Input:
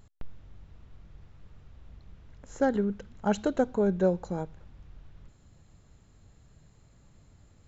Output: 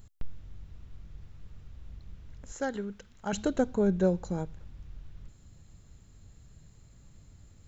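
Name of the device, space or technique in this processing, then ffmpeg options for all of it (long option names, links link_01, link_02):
smiley-face EQ: -filter_complex "[0:a]lowshelf=frequency=130:gain=5,equalizer=frequency=780:width_type=o:width=1.8:gain=-3.5,highshelf=frequency=5900:gain=7.5,asettb=1/sr,asplit=3[link_01][link_02][link_03];[link_01]atrim=end=2.524[link_04];[link_02]atrim=start=2.52:end=3.33,asetpts=PTS-STARTPTS,afade=type=in:duration=0.004:curve=qsin,afade=type=out:start_time=0.806:duration=0.004:curve=qsin,lowshelf=frequency=440:gain=-12[link_05];[link_03]atrim=start=3.326[link_06];[link_04][link_05]acrossfade=duration=0.004:curve1=hsin:curve2=qsin[link_07];[link_07][link_06]acrossfade=duration=0.004:curve1=qsin:curve2=hsin"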